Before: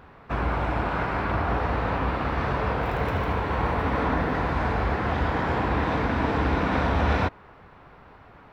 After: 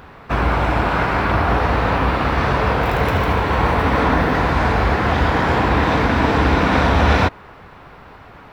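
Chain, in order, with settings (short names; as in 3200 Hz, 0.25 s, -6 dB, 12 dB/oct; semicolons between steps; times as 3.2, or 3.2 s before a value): high shelf 3500 Hz +7.5 dB; gain +8 dB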